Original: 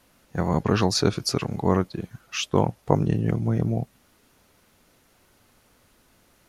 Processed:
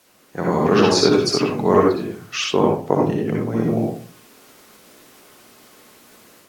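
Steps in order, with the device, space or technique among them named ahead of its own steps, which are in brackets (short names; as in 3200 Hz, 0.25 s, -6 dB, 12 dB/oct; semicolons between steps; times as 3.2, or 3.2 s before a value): filmed off a television (BPF 220–7800 Hz; bell 410 Hz +5 dB 0.3 oct; reverb RT60 0.40 s, pre-delay 54 ms, DRR -1.5 dB; white noise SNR 35 dB; AGC gain up to 7 dB; AAC 64 kbps 44100 Hz)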